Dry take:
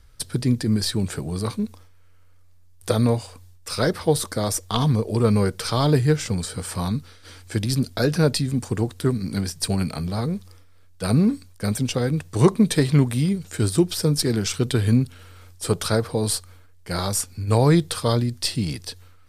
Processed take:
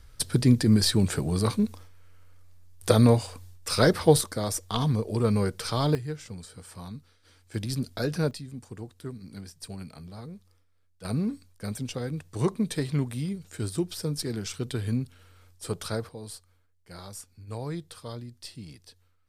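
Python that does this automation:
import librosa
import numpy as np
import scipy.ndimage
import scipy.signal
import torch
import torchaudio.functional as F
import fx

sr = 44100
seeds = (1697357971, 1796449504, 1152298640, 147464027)

y = fx.gain(x, sr, db=fx.steps((0.0, 1.0), (4.21, -5.5), (5.95, -15.5), (7.54, -8.0), (8.31, -16.5), (11.05, -10.0), (16.09, -18.0)))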